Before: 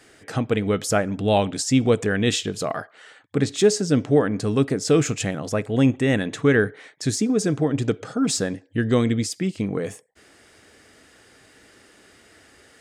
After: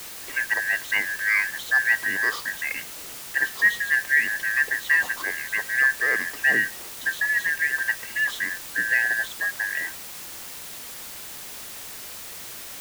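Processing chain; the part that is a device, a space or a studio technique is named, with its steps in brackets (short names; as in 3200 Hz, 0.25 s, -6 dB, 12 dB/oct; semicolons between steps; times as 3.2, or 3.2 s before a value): split-band scrambled radio (four-band scrambler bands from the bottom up 2143; BPF 330–3000 Hz; white noise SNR 12 dB); gain -2.5 dB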